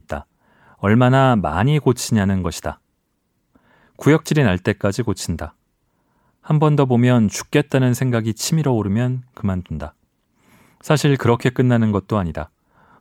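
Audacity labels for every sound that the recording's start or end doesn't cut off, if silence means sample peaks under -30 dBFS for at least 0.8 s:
3.990000	5.480000	sound
6.470000	9.890000	sound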